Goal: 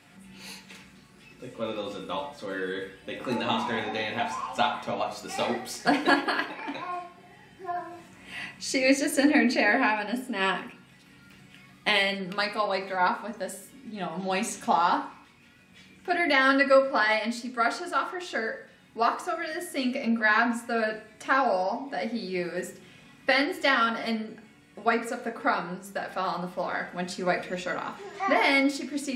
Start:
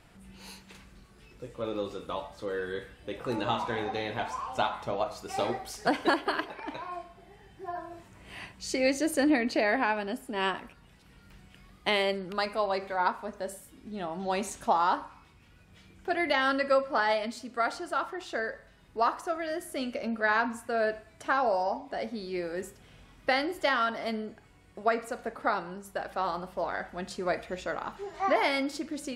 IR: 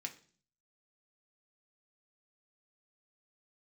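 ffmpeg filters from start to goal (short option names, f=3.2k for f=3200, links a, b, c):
-filter_complex "[1:a]atrim=start_sample=2205[a];[0:a][a]afir=irnorm=-1:irlink=0,volume=7dB"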